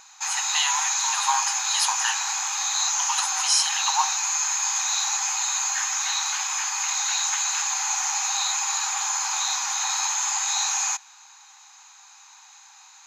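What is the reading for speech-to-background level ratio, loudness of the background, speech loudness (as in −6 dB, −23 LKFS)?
−3.0 dB, −23.0 LKFS, −26.0 LKFS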